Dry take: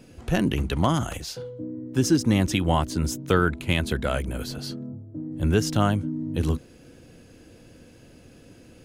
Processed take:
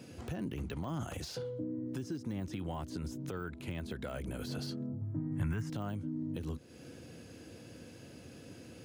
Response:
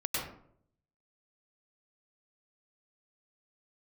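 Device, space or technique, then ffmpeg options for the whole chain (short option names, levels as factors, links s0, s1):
broadcast voice chain: -filter_complex "[0:a]highpass=f=72:w=0.5412,highpass=f=72:w=1.3066,deesser=1,acompressor=threshold=0.02:ratio=4,equalizer=f=4900:t=o:w=0.77:g=2,alimiter=level_in=1.68:limit=0.0631:level=0:latency=1:release=109,volume=0.596,asettb=1/sr,asplit=3[s0][s1][s2];[s0]atrim=end=5.014[s3];[s1]atrim=start=5.01:end=5.7,asetpts=PTS-STARTPTS,afade=t=in:d=0.004:c=qsin,afade=t=out:st=0.686:d=0.004:c=qsin,equalizer=f=125:t=o:w=1:g=9,equalizer=f=500:t=o:w=1:g=-9,equalizer=f=1000:t=o:w=1:g=9,equalizer=f=2000:t=o:w=1:g=11,equalizer=f=4000:t=o:w=1:g=-9,equalizer=f=8000:t=o:w=1:g=4[s4];[s2]atrim=start=5.696[s5];[s3][s4]acrossfade=d=0.004:c1=hsin:c2=qsin[s6];[s6][s5]acrossfade=d=0.004:c1=qsin:c2=hsin,volume=0.891"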